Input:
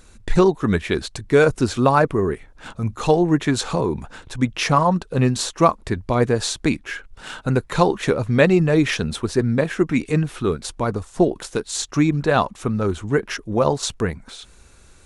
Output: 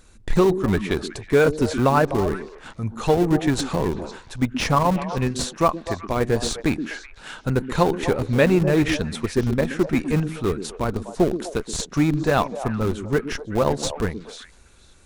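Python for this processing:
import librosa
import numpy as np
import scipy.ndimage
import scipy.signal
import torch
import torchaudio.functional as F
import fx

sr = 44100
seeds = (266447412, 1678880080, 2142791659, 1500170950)

p1 = fx.low_shelf(x, sr, hz=390.0, db=-4.5, at=(5.08, 6.25))
p2 = fx.schmitt(p1, sr, flips_db=-16.0)
p3 = p1 + F.gain(torch.from_numpy(p2), -5.5).numpy()
p4 = fx.echo_stepped(p3, sr, ms=125, hz=260.0, octaves=1.4, feedback_pct=70, wet_db=-6)
y = F.gain(torch.from_numpy(p4), -3.5).numpy()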